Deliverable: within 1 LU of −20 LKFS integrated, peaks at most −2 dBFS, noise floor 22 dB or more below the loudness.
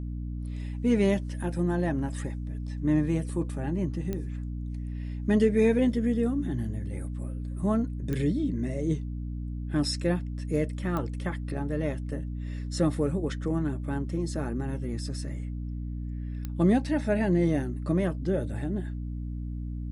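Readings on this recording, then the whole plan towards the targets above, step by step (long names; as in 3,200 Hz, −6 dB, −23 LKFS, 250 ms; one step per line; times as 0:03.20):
number of clicks 4; mains hum 60 Hz; hum harmonics up to 300 Hz; level of the hum −31 dBFS; integrated loudness −29.5 LKFS; sample peak −12.0 dBFS; target loudness −20.0 LKFS
→ click removal
mains-hum notches 60/120/180/240/300 Hz
level +9.5 dB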